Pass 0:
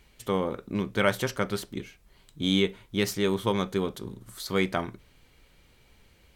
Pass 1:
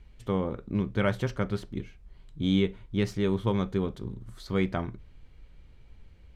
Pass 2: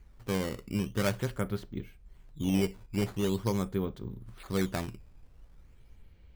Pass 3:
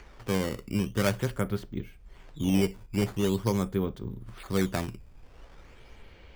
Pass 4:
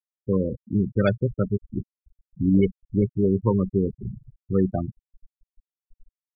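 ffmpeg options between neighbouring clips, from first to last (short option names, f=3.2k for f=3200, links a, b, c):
-af "aemphasis=mode=reproduction:type=bsi,volume=-4.5dB"
-af "acrusher=samples=10:mix=1:aa=0.000001:lfo=1:lforange=16:lforate=0.44,volume=-3dB"
-filter_complex "[0:a]bandreject=f=4k:w=22,acrossover=split=320|6200[a][b][c];[b]acompressor=mode=upward:threshold=-47dB:ratio=2.5[d];[a][d][c]amix=inputs=3:normalize=0,volume=3dB"
-af "acrusher=bits=10:mix=0:aa=0.000001,afftfilt=real='re*gte(hypot(re,im),0.0891)':imag='im*gte(hypot(re,im),0.0891)':win_size=1024:overlap=0.75,volume=6dB"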